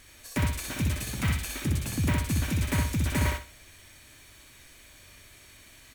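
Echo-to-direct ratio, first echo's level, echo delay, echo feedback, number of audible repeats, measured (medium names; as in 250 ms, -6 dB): -2.5 dB, -3.0 dB, 62 ms, 28%, 3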